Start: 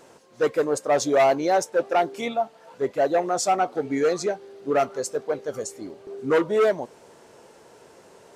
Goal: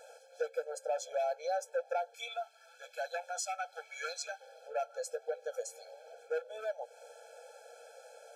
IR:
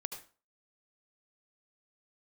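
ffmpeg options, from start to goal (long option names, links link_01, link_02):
-filter_complex "[0:a]asettb=1/sr,asplit=3[link_01][link_02][link_03];[link_01]atrim=end=2.144[link_04];[link_02]atrim=start=2.14:end=4.41,asetpts=PTS-STARTPTS,afade=type=in:duration=0.004:curve=qsin,afade=type=out:start_time=2.266:duration=0.004:curve=qsin,highpass=1400[link_05];[link_03]atrim=start=4.406[link_06];[link_04][link_05]acrossfade=duration=0.004:curve1=hsin:curve2=qsin[link_07];[link_07][link_06]acrossfade=duration=0.004:curve1=qsin:curve2=hsin,acompressor=threshold=-33dB:ratio=4,afftfilt=real='re*eq(mod(floor(b*sr/1024/440),2),1)':imag='im*eq(mod(floor(b*sr/1024/440),2),1)':win_size=1024:overlap=0.75"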